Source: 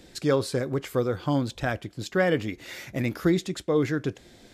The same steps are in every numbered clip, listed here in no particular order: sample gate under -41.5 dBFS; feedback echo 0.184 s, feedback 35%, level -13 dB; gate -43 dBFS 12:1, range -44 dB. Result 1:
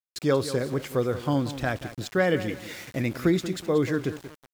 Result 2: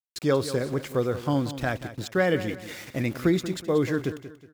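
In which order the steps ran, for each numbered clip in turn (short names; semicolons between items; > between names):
gate > feedback echo > sample gate; gate > sample gate > feedback echo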